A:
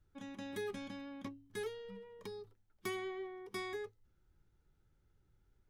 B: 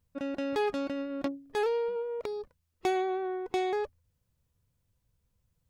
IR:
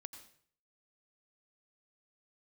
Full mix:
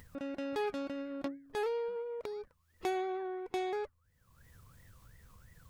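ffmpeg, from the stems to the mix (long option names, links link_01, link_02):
-filter_complex "[0:a]equalizer=frequency=11000:width=1.1:gain=14.5,aeval=exprs='val(0)*sin(2*PI*1500*n/s+1500*0.3/2.9*sin(2*PI*2.9*n/s))':channel_layout=same,volume=-17dB[link_01];[1:a]volume=-5.5dB[link_02];[link_01][link_02]amix=inputs=2:normalize=0,acompressor=mode=upward:threshold=-39dB:ratio=2.5"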